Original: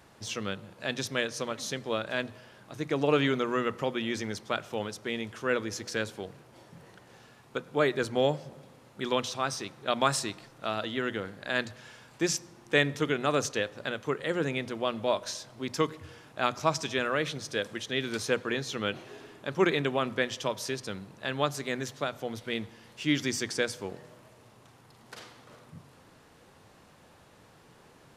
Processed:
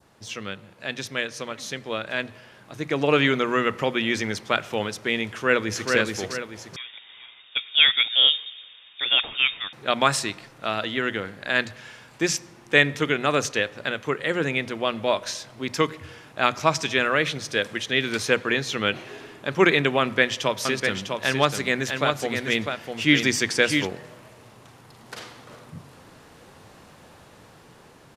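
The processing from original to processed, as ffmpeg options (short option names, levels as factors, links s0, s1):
-filter_complex "[0:a]asplit=2[s0][s1];[s1]afade=t=in:st=5.25:d=0.01,afade=t=out:st=5.94:d=0.01,aecho=0:1:430|860|1290|1720|2150:0.707946|0.283178|0.113271|0.0453085|0.0181234[s2];[s0][s2]amix=inputs=2:normalize=0,asettb=1/sr,asplit=3[s3][s4][s5];[s3]atrim=end=6.764[s6];[s4]atrim=start=6.76:end=9.73,asetpts=PTS-STARTPTS,afade=t=in:d=0.004:c=qsin,afade=t=out:st=2.966:d=0.004:c=qsin,lowpass=f=3200:t=q:w=0.5098,lowpass=f=3200:t=q:w=0.6013,lowpass=f=3200:t=q:w=0.9,lowpass=f=3200:t=q:w=2.563,afreqshift=-3800[s7];[s5]atrim=start=9.726[s8];[s6][s7]acrossfade=d=0.004:c1=hsin:c2=qsin[s9];[s9][s8]acrossfade=d=0.004:c1=qsin:c2=hsin,asettb=1/sr,asplit=3[s10][s11][s12];[s10]atrim=end=20.004[s13];[s11]atrim=start=20:end=23.87,asetpts=PTS-STARTPTS,afade=t=in:d=0.004:c=qsin,afade=t=out:st=3.866:d=0.004:c=qsin,aecho=1:1:651:0.531,atrim=end_sample=170667[s14];[s12]atrim=start=23.866[s15];[s13][s14]acrossfade=d=0.004:c1=hsin:c2=qsin[s16];[s16][s15]acrossfade=d=0.004:c1=qsin:c2=hsin,adynamicequalizer=threshold=0.00447:dfrequency=2200:dqfactor=1.2:tfrequency=2200:tqfactor=1.2:attack=5:release=100:ratio=0.375:range=3:mode=boostabove:tftype=bell,dynaudnorm=f=280:g=21:m=3.76,volume=0.891"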